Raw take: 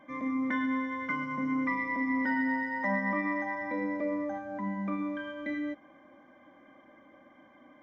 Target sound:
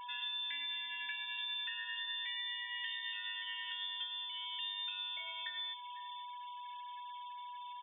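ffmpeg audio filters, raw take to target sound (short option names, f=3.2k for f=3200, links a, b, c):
-filter_complex "[0:a]asplit=2[a][b];[b]aecho=0:1:501:0.106[c];[a][c]amix=inputs=2:normalize=0,afftfilt=real='re*gte(hypot(re,im),0.00355)':imag='im*gte(hypot(re,im),0.00355)':win_size=1024:overlap=0.75,lowpass=f=3.2k:t=q:w=0.5098,lowpass=f=3.2k:t=q:w=0.6013,lowpass=f=3.2k:t=q:w=0.9,lowpass=f=3.2k:t=q:w=2.563,afreqshift=-3800,highshelf=f=2.1k:g=-7.5,aeval=exprs='val(0)+0.00501*sin(2*PI*980*n/s)':c=same,acompressor=threshold=-43dB:ratio=8,equalizer=f=590:t=o:w=2.9:g=-5.5,bandreject=f=291.7:t=h:w=4,bandreject=f=583.4:t=h:w=4,bandreject=f=875.1:t=h:w=4,bandreject=f=1.1668k:t=h:w=4,bandreject=f=1.4585k:t=h:w=4,bandreject=f=1.7502k:t=h:w=4,bandreject=f=2.0419k:t=h:w=4,bandreject=f=2.3336k:t=h:w=4,bandreject=f=2.6253k:t=h:w=4,bandreject=f=2.917k:t=h:w=4,bandreject=f=3.2087k:t=h:w=4,bandreject=f=3.5004k:t=h:w=4,bandreject=f=3.7921k:t=h:w=4,bandreject=f=4.0838k:t=h:w=4,bandreject=f=4.3755k:t=h:w=4,bandreject=f=4.6672k:t=h:w=4,bandreject=f=4.9589k:t=h:w=4,bandreject=f=5.2506k:t=h:w=4,bandreject=f=5.5423k:t=h:w=4,bandreject=f=5.834k:t=h:w=4,bandreject=f=6.1257k:t=h:w=4,bandreject=f=6.4174k:t=h:w=4,bandreject=f=6.7091k:t=h:w=4,bandreject=f=7.0008k:t=h:w=4,bandreject=f=7.2925k:t=h:w=4,bandreject=f=7.5842k:t=h:w=4,bandreject=f=7.8759k:t=h:w=4,bandreject=f=8.1676k:t=h:w=4,bandreject=f=8.4593k:t=h:w=4,bandreject=f=8.751k:t=h:w=4,bandreject=f=9.0427k:t=h:w=4,volume=6dB"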